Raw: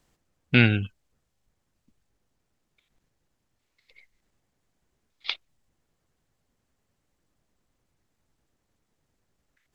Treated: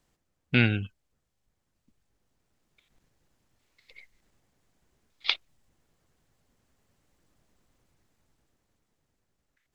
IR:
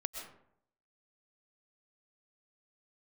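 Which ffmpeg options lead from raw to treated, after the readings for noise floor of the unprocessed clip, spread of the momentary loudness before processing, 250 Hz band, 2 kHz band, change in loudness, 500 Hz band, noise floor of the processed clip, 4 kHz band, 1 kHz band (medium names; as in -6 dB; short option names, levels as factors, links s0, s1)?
-77 dBFS, 19 LU, -4.0 dB, -3.5 dB, -3.5 dB, -4.0 dB, -79 dBFS, +0.5 dB, -3.0 dB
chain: -af "dynaudnorm=f=300:g=13:m=3.76,volume=0.631"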